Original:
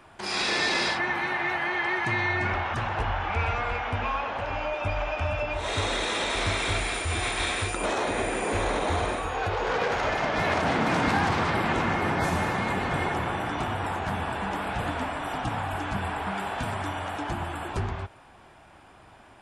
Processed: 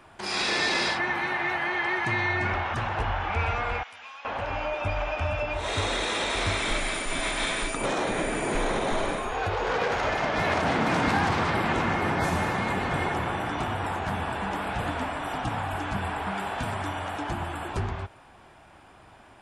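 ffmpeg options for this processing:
-filter_complex "[0:a]asettb=1/sr,asplit=3[s0][s1][s2];[s0]atrim=end=3.834[s3];[s1]atrim=start=3.83:end=4.25,asetpts=PTS-STARTPTS,afade=t=in:d=0.004:c=qsin,afade=t=out:st=0.416:d=0.004:c=qsin,aderivative[s4];[s2]atrim=start=4.246[s5];[s3][s4]acrossfade=d=0.004:c1=hsin:c2=qsin[s6];[s6][s5]acrossfade=d=0.004:c1=qsin:c2=hsin,asettb=1/sr,asplit=3[s7][s8][s9];[s7]atrim=end=6.604[s10];[s8]atrim=start=6.6:end=9.32,asetpts=PTS-STARTPTS,afade=t=in:d=0.004:c=qsin,afade=t=out:st=2.716:d=0.004:c=qsin,afreqshift=-69[s11];[s9]atrim=start=9.316[s12];[s10][s11]acrossfade=d=0.004:c1=hsin:c2=qsin[s13];[s13][s12]acrossfade=d=0.004:c1=qsin:c2=hsin"

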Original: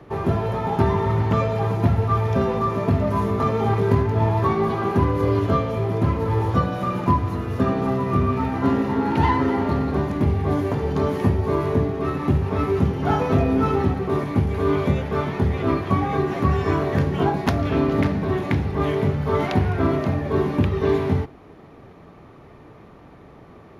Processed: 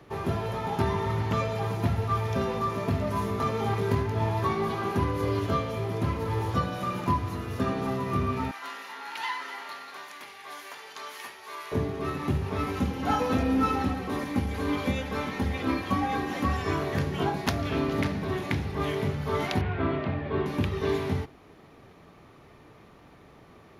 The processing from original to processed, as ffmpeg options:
-filter_complex "[0:a]asettb=1/sr,asplit=3[s0][s1][s2];[s0]atrim=end=8.514[s3];[s1]atrim=start=8.51:end=11.72,asetpts=PTS-STARTPTS,afade=t=in:d=0.004:c=qsin,afade=t=out:st=3.206:d=0.004:c=qsin,highpass=1300[s4];[s2]atrim=start=11.716[s5];[s3][s4]acrossfade=d=0.004:c1=hsin:c2=qsin[s6];[s6][s5]acrossfade=d=0.004:c1=qsin:c2=hsin,asettb=1/sr,asplit=3[s7][s8][s9];[s7]atrim=end=12.664[s10];[s8]atrim=start=12.66:end=16.62,asetpts=PTS-STARTPTS,afade=t=in:d=0.004:c=qsin,afade=t=out:st=3.956:d=0.004:c=qsin,aecho=1:1:3.8:0.65,atrim=end_sample=174636[s11];[s9]atrim=start=16.616[s12];[s10][s11]acrossfade=d=0.004:c1=hsin:c2=qsin[s13];[s13][s12]acrossfade=d=0.004:c1=qsin:c2=hsin,asettb=1/sr,asplit=3[s14][s15][s16];[s14]atrim=end=19.614[s17];[s15]atrim=start=19.61:end=20.46,asetpts=PTS-STARTPTS,afade=t=in:d=0.004:c=qsin,afade=t=out:st=0.846:d=0.004:c=qsin,lowpass=f=3400:w=0.5412,lowpass=f=3400:w=1.3066[s18];[s16]atrim=start=20.456[s19];[s17][s18]acrossfade=d=0.004:c1=hsin:c2=qsin[s20];[s20][s19]acrossfade=d=0.004:c1=qsin:c2=hsin,highshelf=f=2100:g=11,volume=0.398"

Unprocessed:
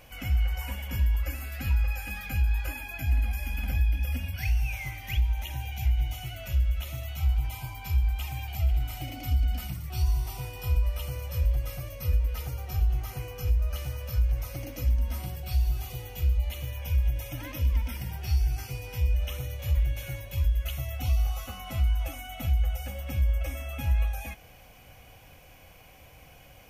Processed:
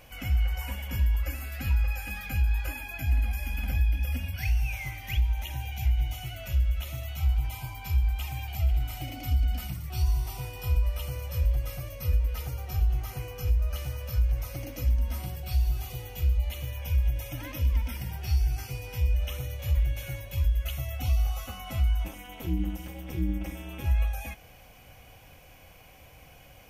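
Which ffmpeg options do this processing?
-filter_complex "[0:a]asplit=3[s0][s1][s2];[s0]afade=t=out:st=22.04:d=0.02[s3];[s1]tremolo=f=250:d=0.974,afade=t=in:st=22.04:d=0.02,afade=t=out:st=23.84:d=0.02[s4];[s2]afade=t=in:st=23.84:d=0.02[s5];[s3][s4][s5]amix=inputs=3:normalize=0"

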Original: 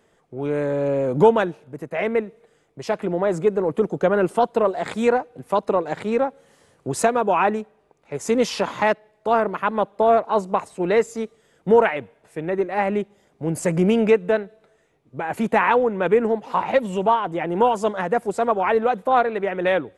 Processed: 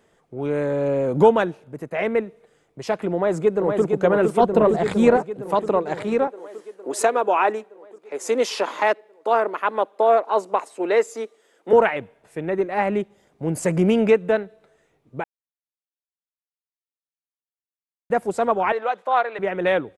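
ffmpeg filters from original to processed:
-filter_complex "[0:a]asplit=2[s0][s1];[s1]afade=t=in:st=3.15:d=0.01,afade=t=out:st=3.84:d=0.01,aecho=0:1:460|920|1380|1840|2300|2760|3220|3680|4140|4600|5060|5520:0.595662|0.446747|0.33506|0.251295|0.188471|0.141353|0.106015|0.0795113|0.0596335|0.0447251|0.0335438|0.0251579[s2];[s0][s2]amix=inputs=2:normalize=0,asettb=1/sr,asplit=3[s3][s4][s5];[s3]atrim=end=4.404[s6];[s4]atrim=start=4.4:end=5.17,asetpts=PTS-STARTPTS,afade=t=in:d=0.004:c=qsin,afade=t=out:st=0.766:d=0.004:c=qsin,lowshelf=f=260:g=11[s7];[s5]atrim=start=5.166[s8];[s6][s7]acrossfade=d=0.004:c1=hsin:c2=qsin[s9];[s9][s8]acrossfade=d=0.004:c1=qsin:c2=hsin,asettb=1/sr,asplit=3[s10][s11][s12];[s10]atrim=end=6.274[s13];[s11]atrim=start=6.27:end=11.73,asetpts=PTS-STARTPTS,afade=t=in:d=0.004:c=qsin,afade=t=out:st=5.456:d=0.004:c=qsin,highpass=f=300:w=0.5412,highpass=f=300:w=1.3066[s14];[s12]atrim=start=11.726[s15];[s13][s14]acrossfade=d=0.004:c1=hsin:c2=qsin[s16];[s16][s15]acrossfade=d=0.004:c1=qsin:c2=hsin,asettb=1/sr,asplit=3[s17][s18][s19];[s17]atrim=end=18.724[s20];[s18]atrim=start=18.72:end=19.39,asetpts=PTS-STARTPTS,afade=t=in:d=0.004:c=qsin,afade=t=out:st=0.666:d=0.004:c=qsin,highpass=650,lowpass=6100[s21];[s19]atrim=start=19.386[s22];[s20][s21]acrossfade=d=0.004:c1=hsin:c2=qsin[s23];[s23][s22]acrossfade=d=0.004:c1=qsin:c2=hsin,asplit=3[s24][s25][s26];[s24]atrim=end=15.24,asetpts=PTS-STARTPTS,afade=t=out:st=15.236:d=0.004:c=hsin[s27];[s25]atrim=start=15.24:end=18.1,asetpts=PTS-STARTPTS,volume=0[s28];[s26]atrim=start=18.1,asetpts=PTS-STARTPTS,afade=t=in:d=0.004:c=hsin[s29];[s27][s28][s29]concat=n=3:v=0:a=1"

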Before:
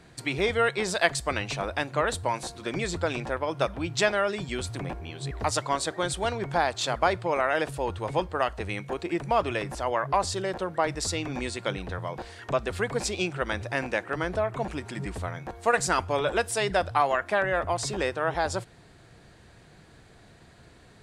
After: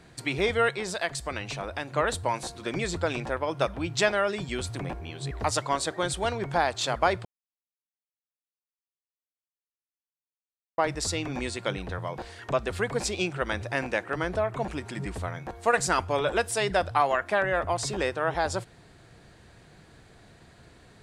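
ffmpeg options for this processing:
-filter_complex "[0:a]asettb=1/sr,asplit=3[s0][s1][s2];[s0]atrim=end=0.754[s3];[s1]atrim=start=0.75:end=1.96,asetpts=PTS-STARTPTS,afade=t=in:d=0.004:c=qsin,afade=t=out:st=1.206:d=0.004:c=qsin,acompressor=threshold=0.0178:ratio=1.5:attack=3.2:release=140:knee=1:detection=peak[s4];[s2]atrim=start=1.956[s5];[s3][s4]acrossfade=d=0.004:c1=hsin:c2=qsin[s6];[s6][s5]acrossfade=d=0.004:c1=qsin:c2=hsin,asplit=3[s7][s8][s9];[s7]atrim=end=7.25,asetpts=PTS-STARTPTS,afade=t=out:st=7.246:d=0.004:c=hsin[s10];[s8]atrim=start=7.25:end=10.78,asetpts=PTS-STARTPTS,volume=0[s11];[s9]atrim=start=10.78,asetpts=PTS-STARTPTS,afade=t=in:d=0.004:c=hsin[s12];[s10][s11][s12]concat=n=3:v=0:a=1"

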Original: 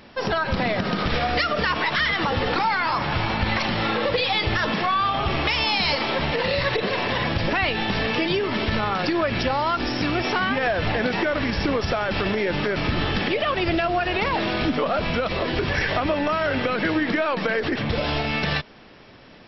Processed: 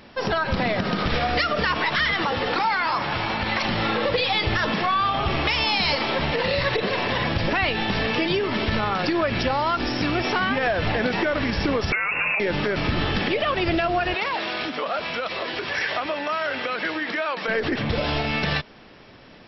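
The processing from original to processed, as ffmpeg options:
-filter_complex "[0:a]asettb=1/sr,asplit=3[s0][s1][s2];[s0]atrim=end=2.224[s3];[s1]atrim=start=2.22:end=3.64,asetpts=PTS-STARTPTS,afade=t=in:d=0.004:c=qsin,afade=t=out:st=1.416:d=0.004:c=qsin,lowshelf=f=150:g=-10[s4];[s2]atrim=start=3.636[s5];[s3][s4]acrossfade=d=0.004:c1=hsin:c2=qsin[s6];[s6][s5]acrossfade=d=0.004:c1=qsin:c2=hsin,asettb=1/sr,asplit=3[s7][s8][s9];[s7]atrim=end=11.924[s10];[s8]atrim=start=11.92:end=12.4,asetpts=PTS-STARTPTS,afade=t=in:d=0.004:c=qsin,afade=t=out:st=0.476:d=0.004:c=qsin,lowpass=f=2400:t=q:w=0.5098,lowpass=f=2400:t=q:w=0.6013,lowpass=f=2400:t=q:w=0.9,lowpass=f=2400:t=q:w=2.563,afreqshift=-2800[s11];[s9]atrim=start=12.396[s12];[s10][s11]acrossfade=d=0.004:c1=hsin:c2=qsin[s13];[s13][s12]acrossfade=d=0.004:c1=qsin:c2=hsin,asettb=1/sr,asplit=3[s14][s15][s16];[s14]atrim=end=14.144[s17];[s15]atrim=start=14.14:end=17.48,asetpts=PTS-STARTPTS,afade=t=in:d=0.004:c=qsin,afade=t=out:st=3.336:d=0.004:c=qsin,highpass=f=790:p=1[s18];[s16]atrim=start=17.476[s19];[s17][s18]acrossfade=d=0.004:c1=hsin:c2=qsin[s20];[s20][s19]acrossfade=d=0.004:c1=qsin:c2=hsin"

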